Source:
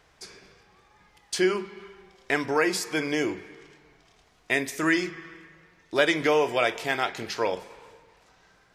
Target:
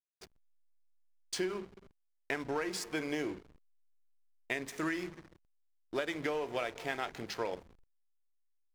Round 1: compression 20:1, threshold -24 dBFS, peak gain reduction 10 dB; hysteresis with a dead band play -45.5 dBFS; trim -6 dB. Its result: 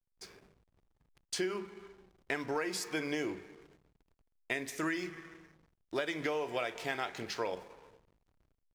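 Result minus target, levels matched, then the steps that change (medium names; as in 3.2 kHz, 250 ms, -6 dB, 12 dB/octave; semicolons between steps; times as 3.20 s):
hysteresis with a dead band: distortion -10 dB
change: hysteresis with a dead band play -33.5 dBFS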